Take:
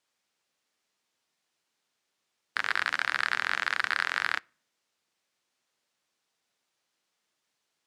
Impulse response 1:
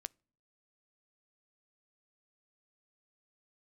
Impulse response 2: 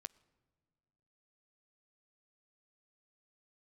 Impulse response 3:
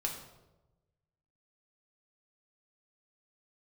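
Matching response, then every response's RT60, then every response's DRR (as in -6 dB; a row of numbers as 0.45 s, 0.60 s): 1; no single decay rate, no single decay rate, 1.0 s; 19.0 dB, 19.0 dB, 0.0 dB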